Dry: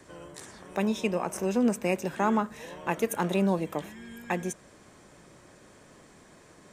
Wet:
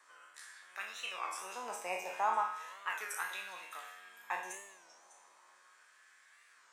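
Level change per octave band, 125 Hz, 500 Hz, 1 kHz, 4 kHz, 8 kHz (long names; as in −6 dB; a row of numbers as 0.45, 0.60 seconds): below −35 dB, −17.0 dB, −4.0 dB, −3.5 dB, −6.0 dB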